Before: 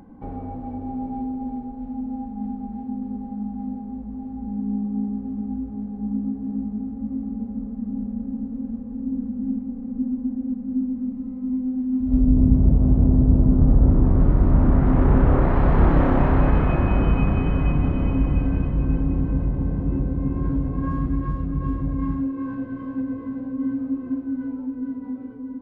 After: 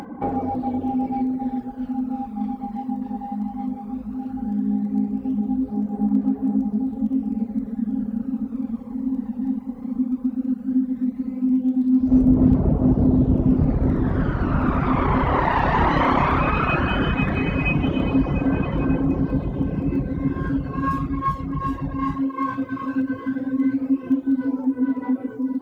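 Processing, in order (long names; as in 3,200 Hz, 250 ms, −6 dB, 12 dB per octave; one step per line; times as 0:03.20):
reverb reduction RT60 0.85 s
phase shifter 0.16 Hz, delay 1.1 ms, feedback 49%
in parallel at 0 dB: downward compressor, threshold −26 dBFS, peak gain reduction 19 dB
on the sum: high-pass filter 440 Hz 6 dB per octave
high-shelf EQ 2,200 Hz +9.5 dB
level +5.5 dB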